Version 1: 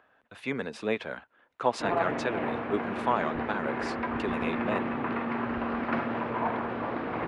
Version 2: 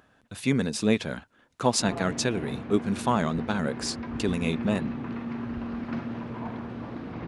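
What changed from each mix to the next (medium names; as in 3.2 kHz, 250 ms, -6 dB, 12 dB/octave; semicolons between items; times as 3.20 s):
background -11.0 dB; master: remove three-band isolator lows -15 dB, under 390 Hz, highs -20 dB, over 3 kHz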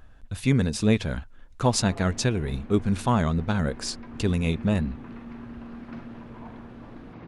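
speech: remove high-pass 190 Hz 12 dB/octave; background -7.0 dB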